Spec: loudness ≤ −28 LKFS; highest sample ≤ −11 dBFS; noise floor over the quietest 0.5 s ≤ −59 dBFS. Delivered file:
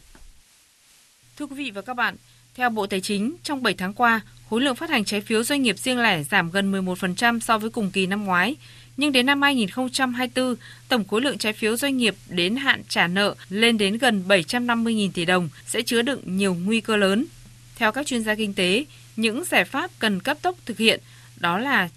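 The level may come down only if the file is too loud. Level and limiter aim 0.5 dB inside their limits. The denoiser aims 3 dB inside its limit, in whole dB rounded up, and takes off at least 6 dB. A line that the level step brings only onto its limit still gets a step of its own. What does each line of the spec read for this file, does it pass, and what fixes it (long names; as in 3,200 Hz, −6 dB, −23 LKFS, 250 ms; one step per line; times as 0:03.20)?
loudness −22.0 LKFS: out of spec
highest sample −2.5 dBFS: out of spec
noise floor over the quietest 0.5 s −57 dBFS: out of spec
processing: level −6.5 dB
brickwall limiter −11.5 dBFS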